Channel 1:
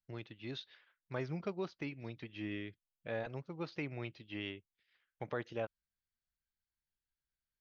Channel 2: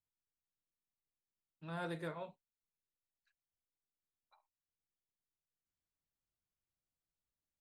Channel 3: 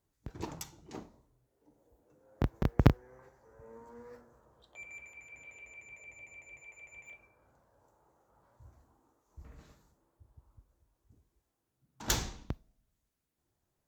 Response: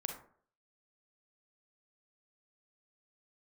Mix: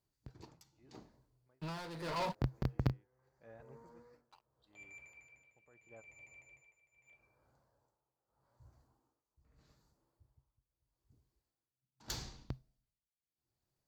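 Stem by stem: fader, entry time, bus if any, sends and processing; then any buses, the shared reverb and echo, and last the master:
-14.5 dB, 0.35 s, no send, low-pass 1.7 kHz 12 dB/octave; auto duck -21 dB, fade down 0.55 s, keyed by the second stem
+2.0 dB, 0.00 s, no send, peaking EQ 970 Hz +9 dB 0.27 oct; waveshaping leveller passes 5
-6.5 dB, 0.00 s, no send, peaking EQ 130 Hz +8.5 dB 0.2 oct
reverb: none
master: peaking EQ 4.6 kHz +9.5 dB 0.33 oct; tremolo 0.8 Hz, depth 85%

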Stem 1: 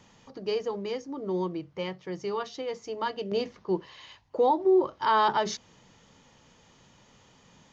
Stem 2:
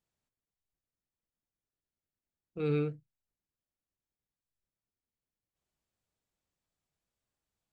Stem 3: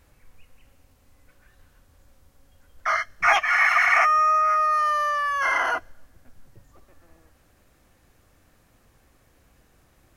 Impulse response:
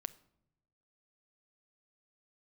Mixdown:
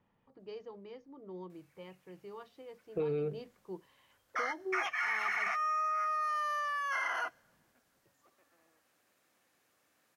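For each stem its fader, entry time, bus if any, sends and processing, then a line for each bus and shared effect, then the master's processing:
-16.0 dB, 0.00 s, no send, level-controlled noise filter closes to 2.1 kHz, open at -19.5 dBFS
+2.5 dB, 0.40 s, no send, high-order bell 540 Hz +8.5 dB 1.3 oct; compression, threshold -27 dBFS, peak gain reduction 6 dB
-10.0 dB, 1.50 s, no send, high-pass 180 Hz 12 dB/octave; tilt EQ +2.5 dB/octave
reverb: none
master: treble shelf 5.4 kHz -8.5 dB; compression 10:1, threshold -30 dBFS, peak gain reduction 8 dB

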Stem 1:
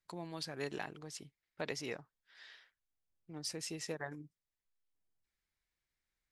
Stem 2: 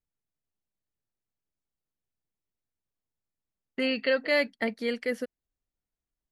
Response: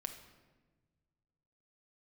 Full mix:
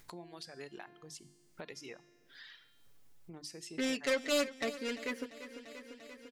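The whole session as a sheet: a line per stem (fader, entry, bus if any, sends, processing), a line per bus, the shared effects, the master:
-1.5 dB, 0.00 s, send -16.5 dB, no echo send, reverb removal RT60 1.7 s; hum notches 50/100/150/200/250/300 Hz; feedback comb 350 Hz, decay 0.76 s, mix 70%
-7.0 dB, 0.00 s, no send, echo send -15 dB, self-modulated delay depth 0.18 ms; comb 7.1 ms, depth 71%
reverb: on, RT60 1.3 s, pre-delay 6 ms
echo: feedback delay 344 ms, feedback 51%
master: upward compressor, threshold -39 dBFS

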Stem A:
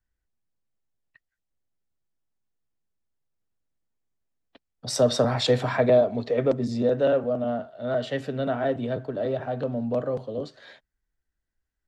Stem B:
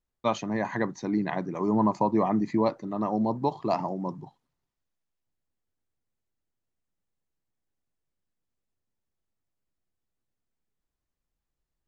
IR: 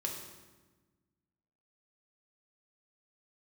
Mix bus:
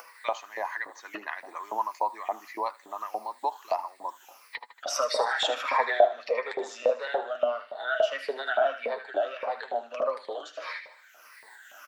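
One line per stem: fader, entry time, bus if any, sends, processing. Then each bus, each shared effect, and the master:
+3.0 dB, 0.00 s, no send, echo send -11.5 dB, drifting ripple filter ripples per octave 0.91, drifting -1.6 Hz, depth 15 dB; upward compressor, threshold -30 dBFS; flange 0.38 Hz, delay 5.9 ms, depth 4.4 ms, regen +38%
-6.5 dB, 0.00 s, no send, echo send -19 dB, none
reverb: none
echo: feedback delay 77 ms, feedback 50%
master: high-pass 260 Hz 24 dB/octave; LFO high-pass saw up 3.5 Hz 630–2200 Hz; three bands compressed up and down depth 40%

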